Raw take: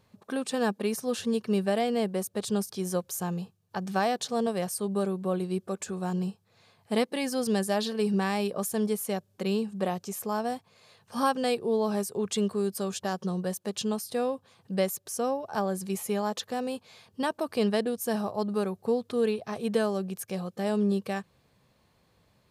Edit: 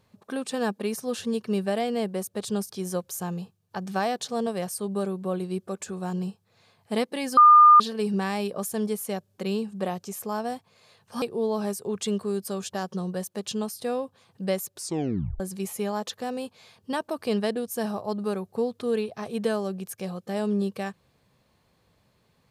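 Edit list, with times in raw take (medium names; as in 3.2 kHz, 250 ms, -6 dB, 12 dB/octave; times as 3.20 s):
7.37–7.80 s: bleep 1.21 kHz -9.5 dBFS
11.22–11.52 s: delete
15.04 s: tape stop 0.66 s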